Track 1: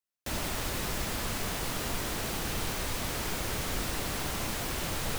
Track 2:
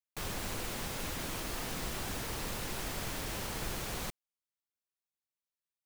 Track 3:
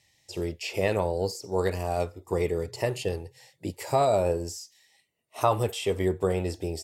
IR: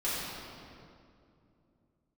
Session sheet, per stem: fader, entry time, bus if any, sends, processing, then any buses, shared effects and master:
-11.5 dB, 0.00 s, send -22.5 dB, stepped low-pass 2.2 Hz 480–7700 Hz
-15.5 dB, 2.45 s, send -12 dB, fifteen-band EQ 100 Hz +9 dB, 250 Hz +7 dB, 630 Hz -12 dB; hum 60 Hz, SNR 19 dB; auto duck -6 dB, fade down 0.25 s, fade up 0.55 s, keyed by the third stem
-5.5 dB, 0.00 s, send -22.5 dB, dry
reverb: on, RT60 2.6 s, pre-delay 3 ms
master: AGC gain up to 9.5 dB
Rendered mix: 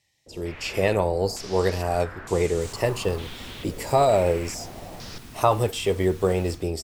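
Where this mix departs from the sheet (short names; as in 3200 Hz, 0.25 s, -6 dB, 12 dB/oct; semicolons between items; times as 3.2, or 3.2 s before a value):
stem 1 -11.5 dB -> -18.5 dB; stem 3: send off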